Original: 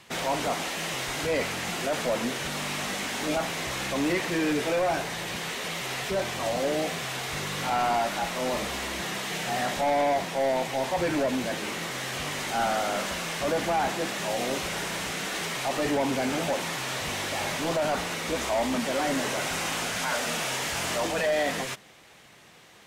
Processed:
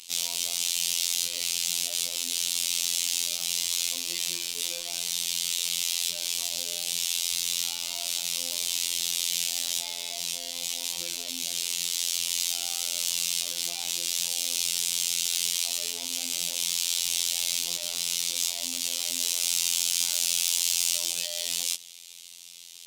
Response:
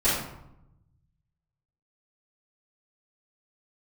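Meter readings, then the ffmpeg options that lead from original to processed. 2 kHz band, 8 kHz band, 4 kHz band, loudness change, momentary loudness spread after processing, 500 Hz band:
-8.5 dB, +10.0 dB, +6.0 dB, +2.0 dB, 6 LU, -21.5 dB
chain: -af "asoftclip=type=tanh:threshold=-30dB,aexciter=amount=12.5:drive=8.5:freq=2.7k,afftfilt=real='hypot(re,im)*cos(PI*b)':imag='0':win_size=2048:overlap=0.75,volume=-12dB"

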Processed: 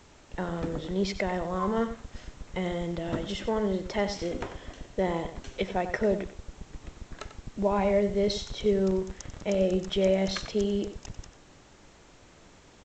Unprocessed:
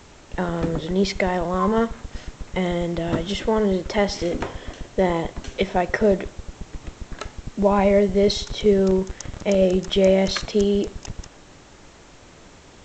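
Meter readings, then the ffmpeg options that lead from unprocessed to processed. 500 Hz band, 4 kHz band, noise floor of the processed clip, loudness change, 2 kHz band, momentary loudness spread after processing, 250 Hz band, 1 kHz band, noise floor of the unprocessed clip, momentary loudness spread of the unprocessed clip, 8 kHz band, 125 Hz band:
-7.5 dB, -8.0 dB, -55 dBFS, -7.5 dB, -7.5 dB, 19 LU, -7.5 dB, -7.5 dB, -47 dBFS, 19 LU, n/a, -7.5 dB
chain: -filter_complex "[0:a]asplit=2[a][b];[b]adelay=93.29,volume=-11dB,highshelf=f=4k:g=-2.1[c];[a][c]amix=inputs=2:normalize=0,volume=-8dB"

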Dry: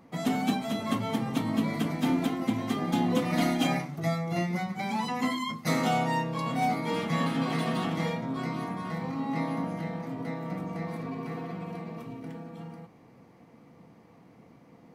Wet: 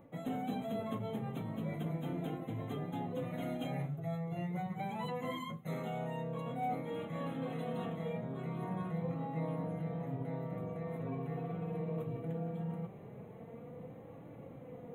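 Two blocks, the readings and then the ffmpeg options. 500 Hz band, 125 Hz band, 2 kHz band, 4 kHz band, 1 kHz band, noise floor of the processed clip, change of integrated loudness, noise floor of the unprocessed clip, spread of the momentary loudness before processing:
-5.5 dB, -5.0 dB, -15.0 dB, -16.5 dB, -10.5 dB, -51 dBFS, -9.5 dB, -56 dBFS, 11 LU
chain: -af "equalizer=f=125:t=o:w=1:g=8,equalizer=f=250:t=o:w=1:g=-8,equalizer=f=500:t=o:w=1:g=7,equalizer=f=1k:t=o:w=1:g=-6,equalizer=f=2k:t=o:w=1:g=-4,equalizer=f=4k:t=o:w=1:g=-6,equalizer=f=8k:t=o:w=1:g=-11,areverse,acompressor=threshold=-42dB:ratio=6,areverse,flanger=delay=3.4:depth=4.5:regen=44:speed=0.14:shape=triangular,asuperstop=centerf=5100:order=20:qfactor=2.3,volume=9dB"

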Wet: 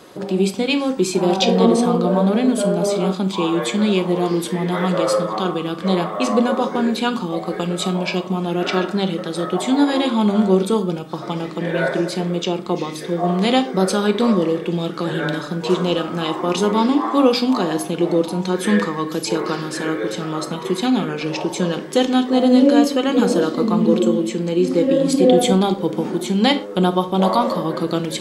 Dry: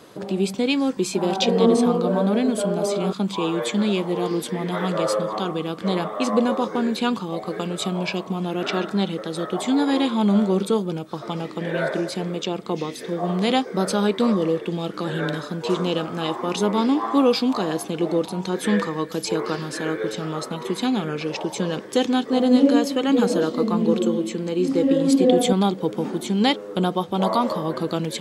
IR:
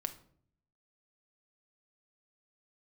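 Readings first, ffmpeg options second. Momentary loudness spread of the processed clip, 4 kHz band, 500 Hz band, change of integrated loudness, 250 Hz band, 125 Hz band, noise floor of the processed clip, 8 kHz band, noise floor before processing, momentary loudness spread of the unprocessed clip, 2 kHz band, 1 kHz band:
8 LU, +3.5 dB, +3.5 dB, +3.5 dB, +3.5 dB, +4.0 dB, -30 dBFS, +3.5 dB, -36 dBFS, 9 LU, +4.0 dB, +4.0 dB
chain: -filter_complex "[0:a]bandreject=f=50:t=h:w=6,bandreject=f=100:t=h:w=6,bandreject=f=150:t=h:w=6,bandreject=f=200:t=h:w=6[a];[1:a]atrim=start_sample=2205,atrim=end_sample=6174[b];[a][b]afir=irnorm=-1:irlink=0,volume=4dB"

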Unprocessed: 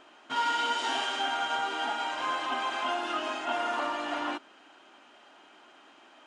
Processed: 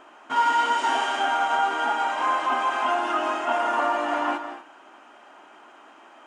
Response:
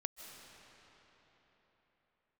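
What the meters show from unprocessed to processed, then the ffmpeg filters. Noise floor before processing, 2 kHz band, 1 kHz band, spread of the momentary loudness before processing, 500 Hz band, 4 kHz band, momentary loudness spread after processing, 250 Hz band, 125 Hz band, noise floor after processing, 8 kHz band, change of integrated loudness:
-57 dBFS, +5.5 dB, +8.5 dB, 4 LU, +7.5 dB, 0.0 dB, 5 LU, +5.5 dB, n/a, -51 dBFS, +3.0 dB, +7.0 dB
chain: -filter_complex "[0:a]equalizer=f=125:t=o:w=1:g=-5,equalizer=f=1k:t=o:w=1:g=4,equalizer=f=4k:t=o:w=1:g=-9[a];[1:a]atrim=start_sample=2205,afade=t=out:st=0.31:d=0.01,atrim=end_sample=14112[b];[a][b]afir=irnorm=-1:irlink=0,volume=8dB"

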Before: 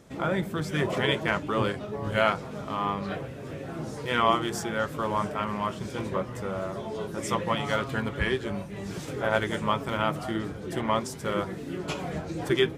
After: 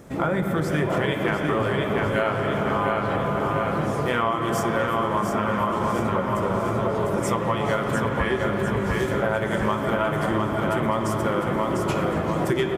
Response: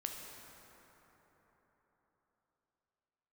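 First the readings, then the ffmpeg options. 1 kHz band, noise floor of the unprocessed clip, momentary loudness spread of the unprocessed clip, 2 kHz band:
+5.0 dB, -39 dBFS, 9 LU, +4.0 dB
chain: -filter_complex "[0:a]aemphasis=mode=production:type=50kf,aecho=1:1:700|1400|2100|2800|3500|4200:0.562|0.253|0.114|0.0512|0.0231|0.0104,asplit=2[a][b];[1:a]atrim=start_sample=2205,asetrate=27783,aresample=44100,lowpass=2.4k[c];[b][c]afir=irnorm=-1:irlink=0,volume=2.5dB[d];[a][d]amix=inputs=2:normalize=0,acrusher=bits=11:mix=0:aa=0.000001,acompressor=threshold=-21dB:ratio=6,highshelf=f=5.8k:g=-5.5,volume=1.5dB"

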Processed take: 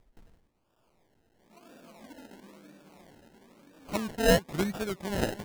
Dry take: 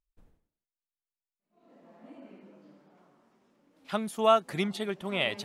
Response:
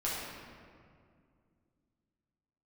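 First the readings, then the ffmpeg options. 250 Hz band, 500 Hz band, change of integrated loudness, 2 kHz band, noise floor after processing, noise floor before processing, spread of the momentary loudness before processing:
+3.0 dB, -0.5 dB, -0.5 dB, +1.0 dB, -73 dBFS, under -85 dBFS, 10 LU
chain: -af "acompressor=mode=upward:threshold=-46dB:ratio=2.5,acrusher=samples=30:mix=1:aa=0.000001:lfo=1:lforange=18:lforate=1"

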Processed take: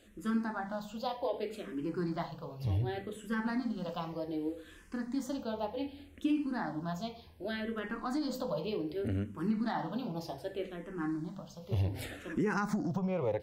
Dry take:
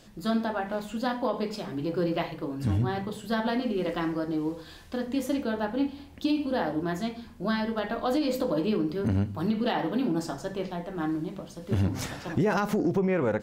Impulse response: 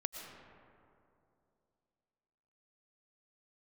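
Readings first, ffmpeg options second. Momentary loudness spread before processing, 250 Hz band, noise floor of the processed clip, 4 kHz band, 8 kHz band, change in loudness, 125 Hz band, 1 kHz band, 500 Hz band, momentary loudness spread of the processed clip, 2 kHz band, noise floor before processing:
8 LU, -7.0 dB, -54 dBFS, -8.5 dB, -8.0 dB, -7.0 dB, -6.0 dB, -7.0 dB, -8.0 dB, 8 LU, -6.5 dB, -47 dBFS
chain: -filter_complex "[0:a]asplit=2[a][b];[b]afreqshift=-0.66[c];[a][c]amix=inputs=2:normalize=1,volume=-4dB"

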